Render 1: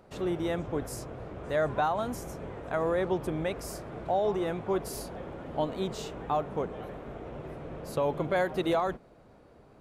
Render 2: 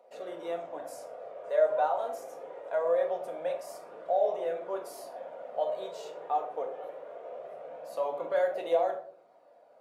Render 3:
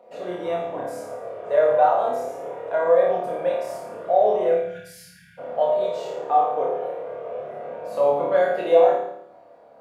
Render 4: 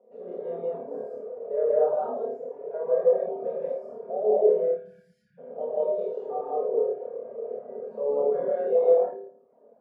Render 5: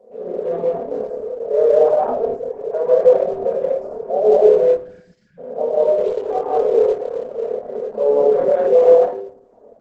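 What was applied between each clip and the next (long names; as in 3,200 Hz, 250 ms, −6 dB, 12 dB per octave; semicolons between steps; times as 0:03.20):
flanger 0.23 Hz, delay 0.3 ms, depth 2.3 ms, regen −50%; high-pass with resonance 580 Hz, resonance Q 4.3; rectangular room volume 590 cubic metres, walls furnished, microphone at 1.8 metres; level −6 dB
time-frequency box erased 0:04.55–0:05.38, 210–1,400 Hz; bass and treble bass +13 dB, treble −6 dB; on a send: flutter between parallel walls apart 4.8 metres, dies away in 0.67 s; on the sum: level +6.5 dB
pair of resonant band-passes 320 Hz, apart 0.78 octaves; reverb whose tail is shaped and stops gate 220 ms rising, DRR −5 dB; reverb reduction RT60 0.59 s
in parallel at −2 dB: brickwall limiter −18 dBFS, peak gain reduction 8 dB; on the sum: level +6 dB; Opus 12 kbit/s 48,000 Hz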